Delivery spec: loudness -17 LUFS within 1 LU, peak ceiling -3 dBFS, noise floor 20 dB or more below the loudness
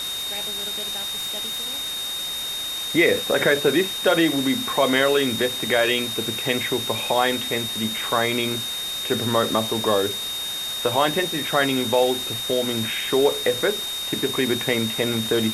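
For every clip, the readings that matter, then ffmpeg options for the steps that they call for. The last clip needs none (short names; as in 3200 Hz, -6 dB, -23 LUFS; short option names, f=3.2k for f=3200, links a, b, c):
steady tone 3700 Hz; tone level -27 dBFS; noise floor -29 dBFS; noise floor target -42 dBFS; loudness -22.0 LUFS; peak -6.0 dBFS; loudness target -17.0 LUFS
-> -af "bandreject=f=3.7k:w=30"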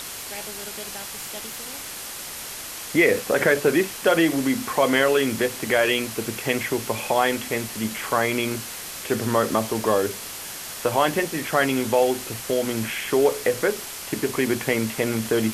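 steady tone none; noise floor -35 dBFS; noise floor target -44 dBFS
-> -af "afftdn=nr=9:nf=-35"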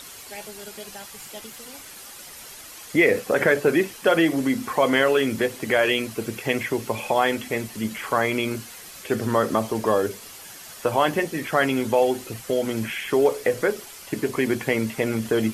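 noise floor -42 dBFS; noise floor target -43 dBFS
-> -af "afftdn=nr=6:nf=-42"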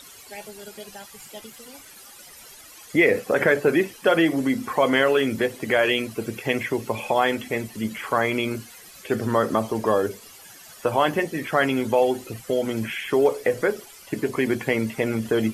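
noise floor -46 dBFS; loudness -23.0 LUFS; peak -7.0 dBFS; loudness target -17.0 LUFS
-> -af "volume=6dB,alimiter=limit=-3dB:level=0:latency=1"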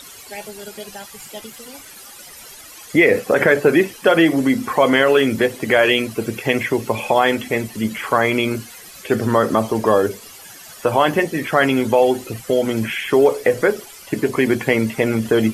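loudness -17.5 LUFS; peak -3.0 dBFS; noise floor -40 dBFS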